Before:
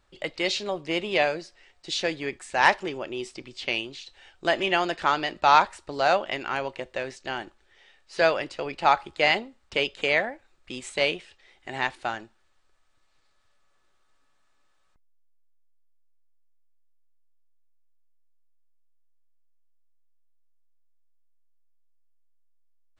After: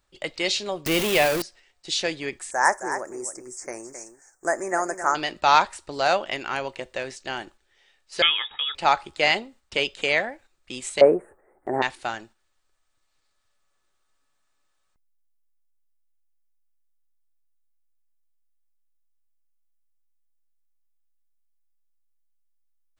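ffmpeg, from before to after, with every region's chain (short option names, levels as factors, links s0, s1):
-filter_complex "[0:a]asettb=1/sr,asplit=3[s0][s1][s2];[s0]atrim=end=0.864[s3];[s1]atrim=start=0.86:end=1.42,asetpts=PTS-STARTPTS,afade=t=in:d=0.004:c=qsin,afade=t=out:st=0.556:d=0.004:c=qsin,aeval=exprs='val(0)+0.5*0.0708*sgn(val(0))':c=same,bass=f=250:g=1,treble=f=4000:g=-3[s4];[s2]atrim=start=1.416[s5];[s3][s4]acrossfade=d=0.004:c1=hsin:c2=qsin[s6];[s6][s5]acrossfade=d=0.004:c1=qsin:c2=hsin,asettb=1/sr,asplit=3[s7][s8][s9];[s7]atrim=end=2.514[s10];[s8]atrim=start=2.51:end=5.15,asetpts=PTS-STARTPTS,afade=t=in:d=0.004:c=qsin,afade=t=out:st=2.636:d=0.004:c=qsin,asuperstop=centerf=3400:order=8:qfactor=0.77,bass=f=250:g=-10,treble=f=4000:g=10,aecho=1:1:266:0.335,atrim=end_sample=116424[s11];[s9]atrim=start=5.146[s12];[s10][s11]acrossfade=d=0.004:c1=hsin:c2=qsin[s13];[s13][s12]acrossfade=d=0.004:c1=qsin:c2=hsin,asettb=1/sr,asplit=3[s14][s15][s16];[s14]atrim=end=8.224[s17];[s15]atrim=start=8.22:end=8.75,asetpts=PTS-STARTPTS,afade=t=in:d=0.004:c=qsin,afade=t=out:st=0.526:d=0.004:c=qsin,aecho=1:1:2.4:0.46,atrim=end_sample=23373,lowpass=f=3200:t=q:w=0.5098,lowpass=f=3200:t=q:w=0.6013,lowpass=f=3200:t=q:w=0.9,lowpass=f=3200:t=q:w=2.563,afreqshift=-3800[s18];[s16]atrim=start=8.746[s19];[s17][s18]acrossfade=d=0.004:c1=hsin:c2=qsin[s20];[s20][s19]acrossfade=d=0.004:c1=qsin:c2=hsin,asettb=1/sr,asplit=3[s21][s22][s23];[s21]atrim=end=11.014[s24];[s22]atrim=start=11.01:end=11.82,asetpts=PTS-STARTPTS,afade=t=in:d=0.004:c=qsin,afade=t=out:st=0.806:d=0.004:c=qsin,asuperstop=centerf=4100:order=8:qfactor=0.51,equalizer=f=440:t=o:w=2.4:g=14[s25];[s23]atrim=start=11.816[s26];[s24][s25]acrossfade=d=0.004:c1=hsin:c2=qsin[s27];[s27][s26]acrossfade=d=0.004:c1=qsin:c2=hsin,agate=range=0.501:threshold=0.00355:ratio=16:detection=peak,highshelf=f=6500:g=12"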